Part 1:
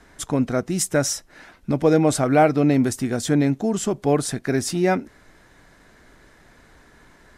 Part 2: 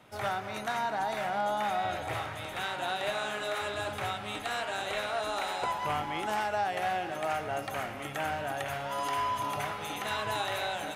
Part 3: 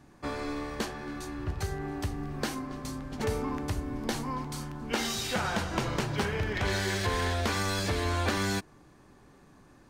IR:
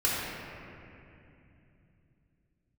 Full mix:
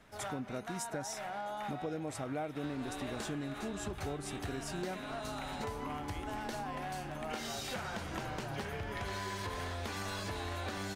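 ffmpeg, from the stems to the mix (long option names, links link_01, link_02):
-filter_complex "[0:a]volume=-12dB[link_01];[1:a]volume=-6.5dB[link_02];[2:a]adelay=2400,volume=-4.5dB[link_03];[link_01][link_02][link_03]amix=inputs=3:normalize=0,acompressor=threshold=-37dB:ratio=4"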